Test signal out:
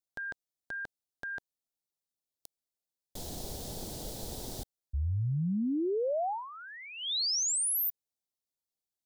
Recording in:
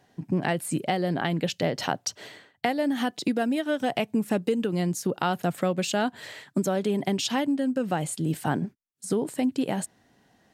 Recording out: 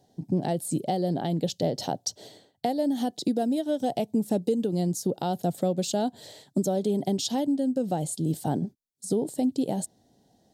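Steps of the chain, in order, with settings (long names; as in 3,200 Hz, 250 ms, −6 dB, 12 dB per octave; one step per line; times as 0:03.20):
flat-topped bell 1,700 Hz −16 dB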